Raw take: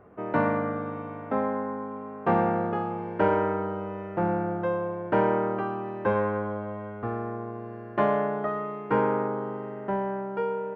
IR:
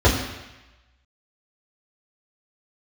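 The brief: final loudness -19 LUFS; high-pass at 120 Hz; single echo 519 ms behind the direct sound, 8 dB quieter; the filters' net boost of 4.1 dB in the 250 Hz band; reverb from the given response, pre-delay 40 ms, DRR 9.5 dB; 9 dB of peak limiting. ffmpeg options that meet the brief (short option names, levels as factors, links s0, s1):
-filter_complex "[0:a]highpass=120,equalizer=f=250:t=o:g=6,alimiter=limit=0.133:level=0:latency=1,aecho=1:1:519:0.398,asplit=2[s0][s1];[1:a]atrim=start_sample=2205,adelay=40[s2];[s1][s2]afir=irnorm=-1:irlink=0,volume=0.0282[s3];[s0][s3]amix=inputs=2:normalize=0,volume=2.51"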